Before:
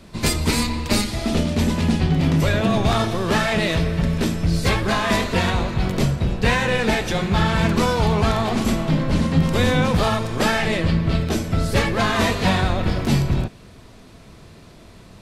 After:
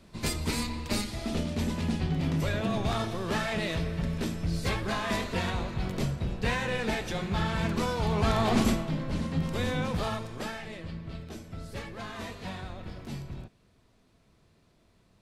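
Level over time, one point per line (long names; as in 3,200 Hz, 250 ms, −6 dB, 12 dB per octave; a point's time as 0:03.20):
0:08.01 −10.5 dB
0:08.60 −2 dB
0:08.90 −12 dB
0:10.15 −12 dB
0:10.65 −20 dB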